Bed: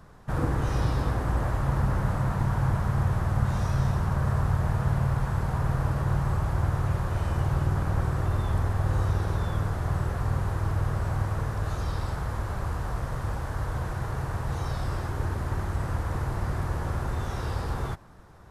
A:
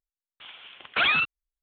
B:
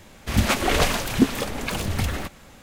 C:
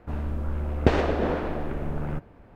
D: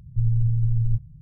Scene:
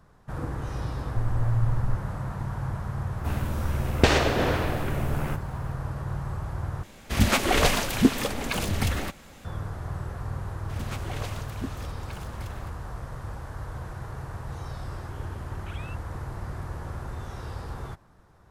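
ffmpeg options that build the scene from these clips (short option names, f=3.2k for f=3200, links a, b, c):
-filter_complex "[2:a]asplit=2[a][b];[0:a]volume=-6dB[c];[4:a]aphaser=in_gain=1:out_gain=1:delay=3:decay=0.5:speed=1.7:type=triangular[d];[3:a]crystalizer=i=8:c=0[e];[1:a]acompressor=threshold=-27dB:ratio=6:attack=3.2:release=140:knee=1:detection=peak[f];[c]asplit=2[g][h];[g]atrim=end=6.834[i];[a]atrim=end=2.62,asetpts=PTS-STARTPTS,volume=-1dB[j];[h]atrim=start=9.446[k];[d]atrim=end=1.21,asetpts=PTS-STARTPTS,volume=-7.5dB,afade=t=in:d=0.004:c=hsin,afade=t=out:st=1.206:d=0.004:c=hsin,adelay=990[l];[e]atrim=end=2.55,asetpts=PTS-STARTPTS,volume=-1dB,afade=t=in:d=0.004:c=hsin,afade=t=out:st=2.546:d=0.004:c=hsin,adelay=139797S[m];[b]atrim=end=2.62,asetpts=PTS-STARTPTS,volume=-17.5dB,afade=t=in:d=0.004:c=hsin,afade=t=out:st=2.616:d=0.004:c=hsin,adelay=459522S[n];[f]atrim=end=1.62,asetpts=PTS-STARTPTS,volume=-17.5dB,afade=t=in:d=0.004:c=hsin,afade=t=out:st=1.616:d=0.004:c=hsin,adelay=14700[o];[i][j]acrossfade=d=0.004:c1=hsin:c2=hsin[p];[p][k]acrossfade=d=0.004:c1=hsin:c2=hsin[q];[q][l][m][n][o]amix=inputs=5:normalize=0"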